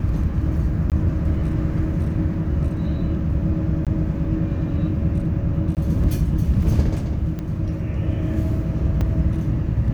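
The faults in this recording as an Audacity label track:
0.900000	0.920000	dropout 18 ms
3.850000	3.870000	dropout 17 ms
5.750000	5.770000	dropout 18 ms
7.390000	7.390000	pop -18 dBFS
9.010000	9.010000	dropout 3.5 ms

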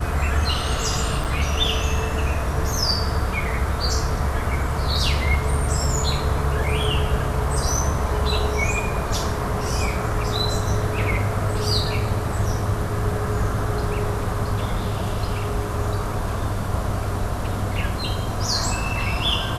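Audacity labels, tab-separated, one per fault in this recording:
1.240000	1.250000	dropout 7.9 ms

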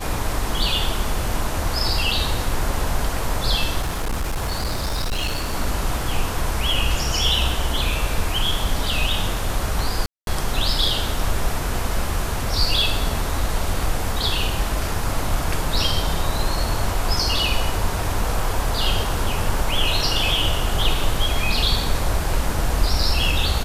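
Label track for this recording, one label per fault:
3.820000	5.540000	clipped -19.5 dBFS
10.060000	10.270000	dropout 212 ms

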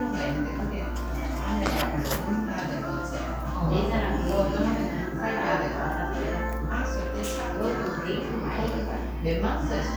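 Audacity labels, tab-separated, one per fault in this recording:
6.990000	7.490000	clipped -26.5 dBFS

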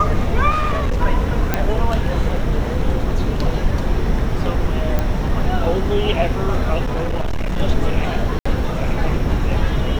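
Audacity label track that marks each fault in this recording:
0.500000	1.000000	clipped -14.5 dBFS
1.540000	1.540000	pop -3 dBFS
4.990000	4.990000	pop -7 dBFS
6.830000	7.600000	clipped -16.5 dBFS
8.390000	8.460000	dropout 65 ms

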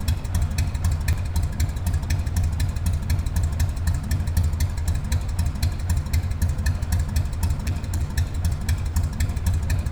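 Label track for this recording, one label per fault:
1.130000	1.130000	dropout 4.5 ms
7.670000	8.040000	clipped -19.5 dBFS

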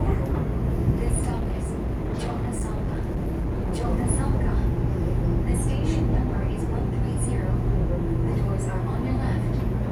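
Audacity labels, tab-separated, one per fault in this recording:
1.360000	3.850000	clipped -22.5 dBFS

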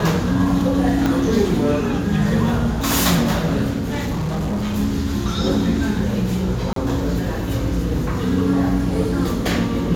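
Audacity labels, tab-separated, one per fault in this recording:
1.060000	1.060000	pop -7 dBFS
3.780000	4.770000	clipped -19 dBFS
6.730000	6.760000	dropout 33 ms

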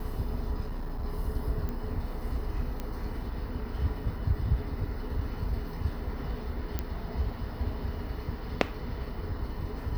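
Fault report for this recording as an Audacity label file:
0.600000	1.050000	clipped -30.5 dBFS
1.690000	1.690000	pop -23 dBFS
2.800000	2.800000	pop -21 dBFS
6.790000	6.790000	pop -16 dBFS

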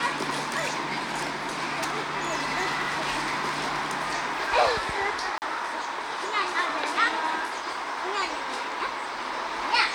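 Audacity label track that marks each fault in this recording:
0.570000	3.960000	clipped -22 dBFS
5.380000	5.420000	dropout 39 ms

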